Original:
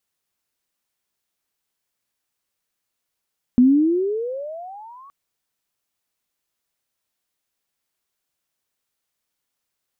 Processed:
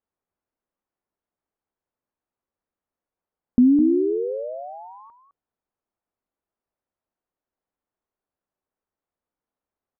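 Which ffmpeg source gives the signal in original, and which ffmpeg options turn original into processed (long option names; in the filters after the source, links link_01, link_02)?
-f lavfi -i "aevalsrc='pow(10,(-8.5-33*t/1.52)/20)*sin(2*PI*241*1.52/(27*log(2)/12)*(exp(27*log(2)/12*t/1.52)-1))':duration=1.52:sample_rate=44100"
-filter_complex "[0:a]lowpass=1000,equalizer=frequency=130:width=2.4:gain=-6,asplit=2[link_01][link_02];[link_02]aecho=0:1:209:0.316[link_03];[link_01][link_03]amix=inputs=2:normalize=0"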